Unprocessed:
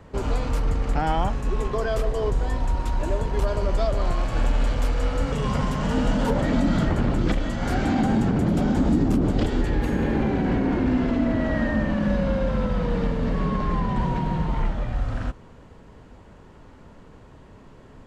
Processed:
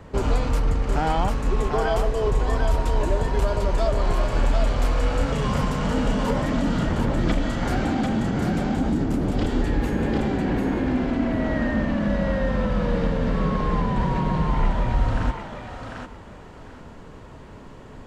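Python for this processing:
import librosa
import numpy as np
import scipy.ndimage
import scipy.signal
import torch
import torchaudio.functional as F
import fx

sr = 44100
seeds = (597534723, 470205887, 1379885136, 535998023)

y = fx.rider(x, sr, range_db=10, speed_s=0.5)
y = fx.echo_thinned(y, sr, ms=746, feedback_pct=22, hz=420.0, wet_db=-3.5)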